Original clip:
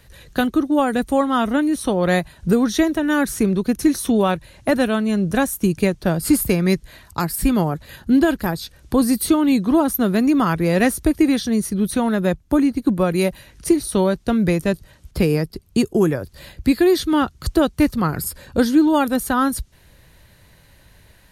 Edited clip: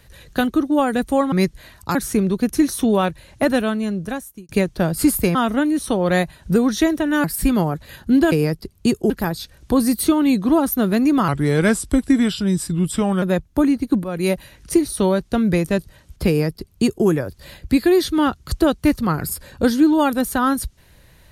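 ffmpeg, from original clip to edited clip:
-filter_complex "[0:a]asplit=11[a][b][c][d][e][f][g][h][i][j][k];[a]atrim=end=1.322[l];[b]atrim=start=6.608:end=7.242[m];[c]atrim=start=3.208:end=5.75,asetpts=PTS-STARTPTS,afade=t=out:st=1.622:d=0.92[n];[d]atrim=start=5.75:end=6.612,asetpts=PTS-STARTPTS,afade=t=in:d=0.004:c=hsin[o];[e]atrim=start=1.318:end=3.212[p];[f]atrim=start=7.238:end=8.322[q];[g]atrim=start=15.228:end=16.012[r];[h]atrim=start=8.318:end=10.504[s];[i]atrim=start=10.5:end=12.17,asetpts=PTS-STARTPTS,asetrate=37926,aresample=44100,atrim=end_sample=85636,asetpts=PTS-STARTPTS[t];[j]atrim=start=12.166:end=12.99,asetpts=PTS-STARTPTS,afade=t=out:st=0.82:d=0.004:c=hsin:silence=0.211349[u];[k]atrim=start=12.99,asetpts=PTS-STARTPTS,afade=t=in:d=0.25:silence=0.211349[v];[l][m]acrossfade=d=0.004:c1=hsin:c2=hsin[w];[n][o]concat=n=2:v=0:a=1[x];[w][x]acrossfade=d=0.004:c1=hsin:c2=hsin[y];[y][p]acrossfade=d=0.004:c1=hsin:c2=hsin[z];[z][q]acrossfade=d=0.004:c1=hsin:c2=hsin[aa];[aa][r]acrossfade=d=0.004:c1=hsin:c2=hsin[ab];[ab][s]acrossfade=d=0.004:c1=hsin:c2=hsin[ac];[ac][t]acrossfade=d=0.004:c1=hsin:c2=hsin[ad];[u][v]concat=n=2:v=0:a=1[ae];[ad][ae]acrossfade=d=0.004:c1=hsin:c2=hsin"

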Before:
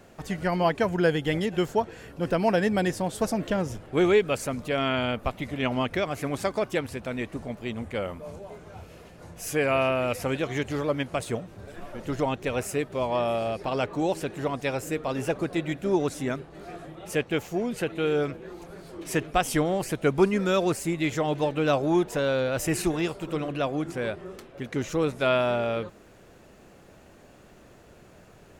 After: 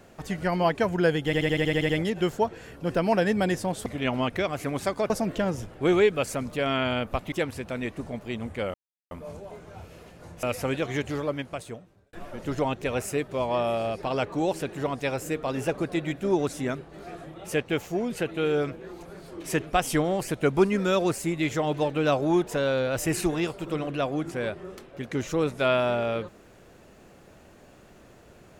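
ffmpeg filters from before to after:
-filter_complex "[0:a]asplit=15[a][b][c][d][e][f][g][h][i][j][k][l][m][n][o];[a]atrim=end=1.332[p];[b]atrim=start=1.248:end=1.332[q];[c]atrim=start=1.248:end=1.332[r];[d]atrim=start=1.248:end=1.332[s];[e]atrim=start=1.248:end=1.332[t];[f]atrim=start=1.248:end=1.332[u];[g]atrim=start=1.248:end=1.332[v];[h]atrim=start=1.248:end=1.332[w];[i]atrim=start=1.248:end=3.222[x];[j]atrim=start=5.438:end=6.682[y];[k]atrim=start=3.218:end=5.442[z];[l]atrim=start=6.678:end=8.1,asetpts=PTS-STARTPTS,afade=t=out:st=1.418:d=0.004:c=hsin,apad=pad_dur=0.37[aa];[m]atrim=start=8.1:end=9.422,asetpts=PTS-STARTPTS,afade=t=in:d=0.004:c=hsin[ab];[n]atrim=start=10.038:end=11.74,asetpts=PTS-STARTPTS,afade=t=out:st=0.582:d=1.12[ac];[o]atrim=start=11.74,asetpts=PTS-STARTPTS,afade=t=in:d=0.004:c=hsin[ad];[p][q]acrossfade=d=0.004:c1=hsin:c2=hsin[ae];[ae][r]acrossfade=d=0.004:c1=hsin:c2=hsin[af];[af][s]acrossfade=d=0.004:c1=hsin:c2=hsin[ag];[ag][t]acrossfade=d=0.004:c1=hsin:c2=hsin[ah];[ah][u]acrossfade=d=0.004:c1=hsin:c2=hsin[ai];[ai][v]acrossfade=d=0.004:c1=hsin:c2=hsin[aj];[aj][w]acrossfade=d=0.004:c1=hsin:c2=hsin[ak];[ak][x]acrossfade=d=0.004:c1=hsin:c2=hsin[al];[al][y]acrossfade=d=0.004:c1=hsin:c2=hsin[am];[am][z]acrossfade=d=0.004:c1=hsin:c2=hsin[an];[aa][ab]concat=n=2:v=0:a=1[ao];[an][ao]acrossfade=d=0.004:c1=hsin:c2=hsin[ap];[ac][ad]concat=n=2:v=0:a=1[aq];[ap][aq]acrossfade=d=0.004:c1=hsin:c2=hsin"

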